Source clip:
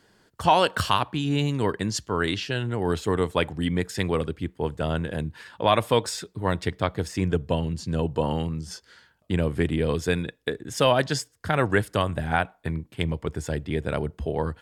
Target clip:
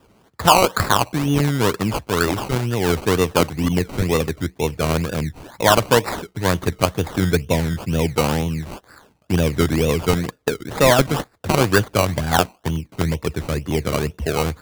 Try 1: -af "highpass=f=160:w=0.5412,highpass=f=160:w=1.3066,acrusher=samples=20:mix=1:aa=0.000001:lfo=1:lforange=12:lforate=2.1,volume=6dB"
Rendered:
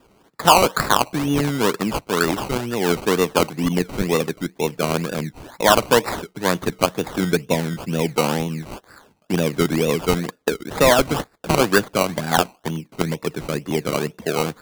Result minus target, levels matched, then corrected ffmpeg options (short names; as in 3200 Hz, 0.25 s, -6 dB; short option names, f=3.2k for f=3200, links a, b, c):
125 Hz band -4.5 dB
-af "highpass=f=47:w=0.5412,highpass=f=47:w=1.3066,acrusher=samples=20:mix=1:aa=0.000001:lfo=1:lforange=12:lforate=2.1,volume=6dB"